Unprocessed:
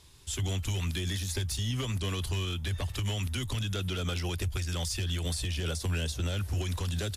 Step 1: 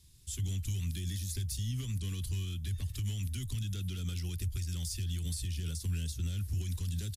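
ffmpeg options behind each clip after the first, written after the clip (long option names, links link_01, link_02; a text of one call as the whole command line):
ffmpeg -i in.wav -af "firequalizer=gain_entry='entry(150,0);entry(590,-22);entry(1900,-11);entry(4700,-4);entry(12000,2)':delay=0.05:min_phase=1,volume=-2.5dB" out.wav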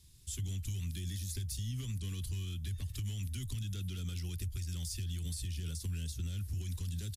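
ffmpeg -i in.wav -af "acompressor=threshold=-37dB:ratio=2" out.wav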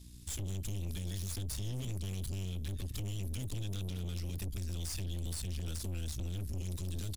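ffmpeg -i in.wav -af "aeval=exprs='val(0)+0.00158*(sin(2*PI*60*n/s)+sin(2*PI*2*60*n/s)/2+sin(2*PI*3*60*n/s)/3+sin(2*PI*4*60*n/s)/4+sin(2*PI*5*60*n/s)/5)':channel_layout=same,aeval=exprs='(tanh(141*val(0)+0.6)-tanh(0.6))/141':channel_layout=same,volume=7dB" out.wav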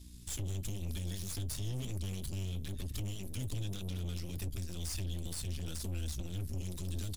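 ffmpeg -i in.wav -af "flanger=delay=3:depth=5.1:regen=-58:speed=1:shape=triangular,volume=4.5dB" out.wav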